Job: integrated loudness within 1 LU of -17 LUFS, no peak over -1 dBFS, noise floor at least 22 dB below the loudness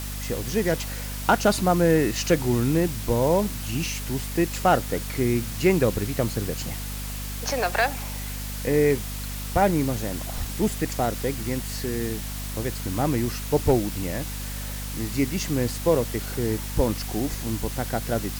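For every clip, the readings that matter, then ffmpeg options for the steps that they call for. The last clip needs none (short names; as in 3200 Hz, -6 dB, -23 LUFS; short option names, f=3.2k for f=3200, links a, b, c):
hum 50 Hz; harmonics up to 250 Hz; hum level -31 dBFS; noise floor -32 dBFS; noise floor target -47 dBFS; loudness -25.0 LUFS; peak -8.0 dBFS; loudness target -17.0 LUFS
-> -af "bandreject=f=50:t=h:w=6,bandreject=f=100:t=h:w=6,bandreject=f=150:t=h:w=6,bandreject=f=200:t=h:w=6,bandreject=f=250:t=h:w=6"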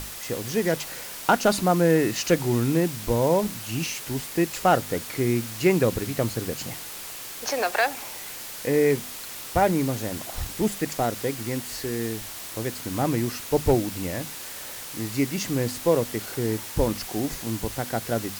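hum none; noise floor -38 dBFS; noise floor target -48 dBFS
-> -af "afftdn=nr=10:nf=-38"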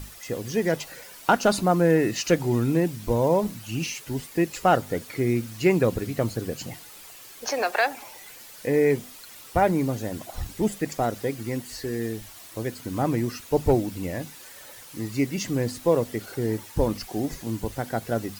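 noise floor -45 dBFS; noise floor target -48 dBFS
-> -af "afftdn=nr=6:nf=-45"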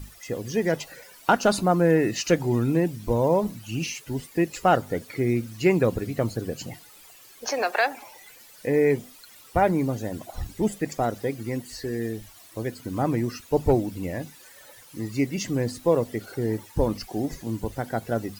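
noise floor -50 dBFS; loudness -26.0 LUFS; peak -8.5 dBFS; loudness target -17.0 LUFS
-> -af "volume=9dB,alimiter=limit=-1dB:level=0:latency=1"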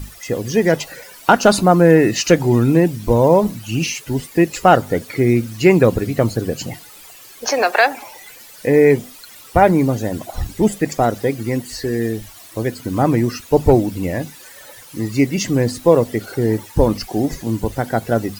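loudness -17.0 LUFS; peak -1.0 dBFS; noise floor -41 dBFS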